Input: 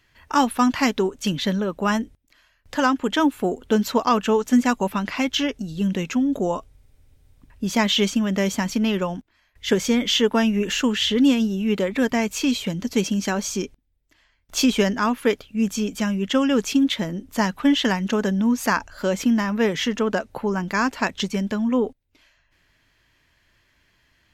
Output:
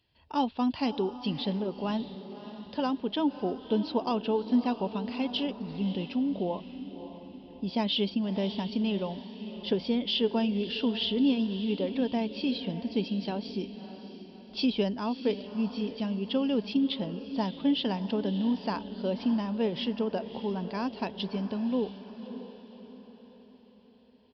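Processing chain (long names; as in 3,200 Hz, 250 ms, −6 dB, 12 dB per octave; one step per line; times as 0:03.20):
high-pass filter 52 Hz
flat-topped bell 1,600 Hz −12.5 dB 1.2 octaves
on a send: feedback delay with all-pass diffusion 608 ms, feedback 47%, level −12 dB
on the sum: downsampling to 11,025 Hz
level −8 dB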